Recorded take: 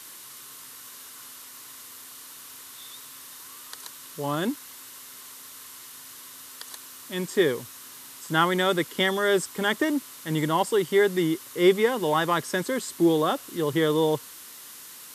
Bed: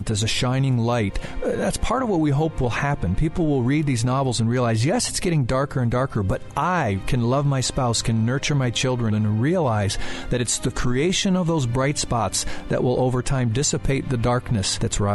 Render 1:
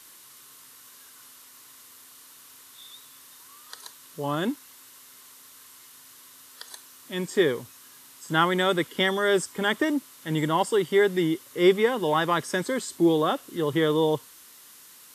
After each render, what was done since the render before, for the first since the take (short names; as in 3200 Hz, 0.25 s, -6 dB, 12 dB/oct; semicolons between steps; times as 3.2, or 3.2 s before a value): noise print and reduce 6 dB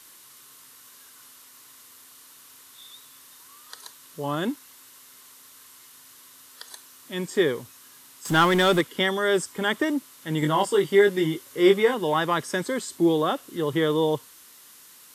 8.25–8.81 power-law curve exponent 0.7; 10.4–11.94 doubler 20 ms -4.5 dB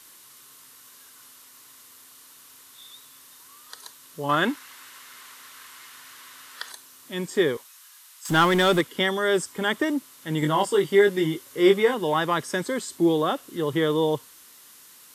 4.29–6.72 bell 1700 Hz +11.5 dB 2.4 oct; 7.57–8.29 HPF 1100 Hz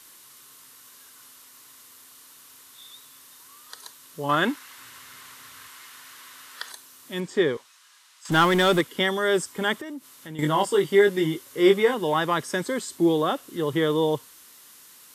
4.78–5.68 bell 100 Hz +13.5 dB 1.9 oct; 7.2–8.32 air absorption 62 m; 9.78–10.39 compressor 3:1, threshold -37 dBFS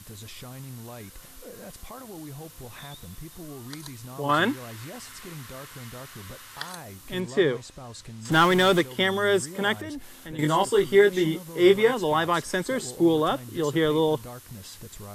add bed -20.5 dB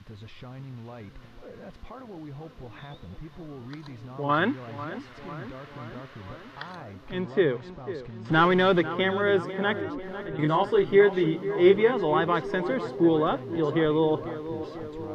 air absorption 280 m; tape echo 0.495 s, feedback 76%, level -11.5 dB, low-pass 1800 Hz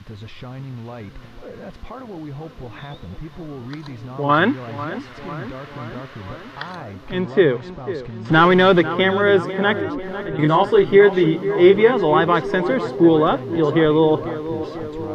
gain +8 dB; limiter -2 dBFS, peak gain reduction 3 dB